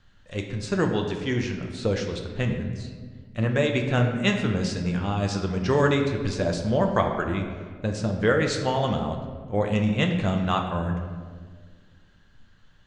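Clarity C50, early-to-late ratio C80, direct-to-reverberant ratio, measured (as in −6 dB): 6.0 dB, 7.5 dB, 2.5 dB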